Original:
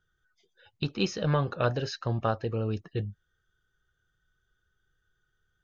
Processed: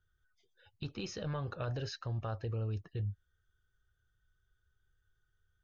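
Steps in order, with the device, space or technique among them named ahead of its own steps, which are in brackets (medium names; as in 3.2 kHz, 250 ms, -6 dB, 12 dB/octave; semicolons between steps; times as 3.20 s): car stereo with a boomy subwoofer (resonant low shelf 130 Hz +7 dB, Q 1.5; peak limiter -23 dBFS, peak gain reduction 10 dB); trim -6.5 dB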